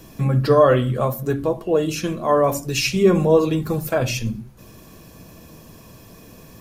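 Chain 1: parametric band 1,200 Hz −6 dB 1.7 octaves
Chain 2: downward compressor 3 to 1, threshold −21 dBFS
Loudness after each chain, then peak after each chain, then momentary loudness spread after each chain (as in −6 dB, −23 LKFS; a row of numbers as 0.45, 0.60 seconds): −21.0, −24.5 LKFS; −5.5, −11.5 dBFS; 8, 22 LU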